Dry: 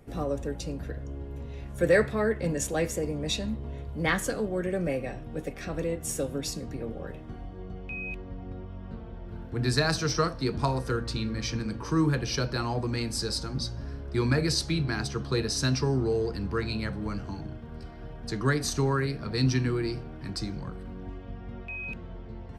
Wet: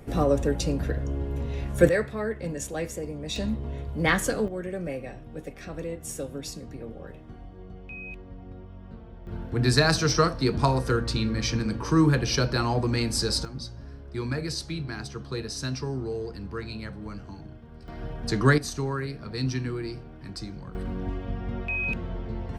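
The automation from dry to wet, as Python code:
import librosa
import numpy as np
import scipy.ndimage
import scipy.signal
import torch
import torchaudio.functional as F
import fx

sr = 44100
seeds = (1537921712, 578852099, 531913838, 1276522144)

y = fx.gain(x, sr, db=fx.steps((0.0, 8.0), (1.89, -3.5), (3.36, 3.5), (4.48, -3.5), (9.27, 4.5), (13.45, -5.0), (17.88, 6.0), (18.58, -3.5), (20.75, 8.0)))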